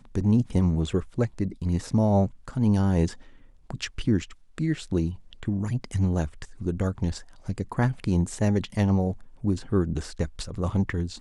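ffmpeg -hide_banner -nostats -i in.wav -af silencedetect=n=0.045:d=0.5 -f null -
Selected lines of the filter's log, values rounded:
silence_start: 3.07
silence_end: 3.70 | silence_duration: 0.64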